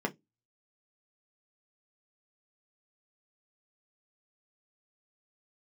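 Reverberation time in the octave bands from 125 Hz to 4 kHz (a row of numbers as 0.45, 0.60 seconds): 0.25, 0.25, 0.20, 0.10, 0.15, 0.15 seconds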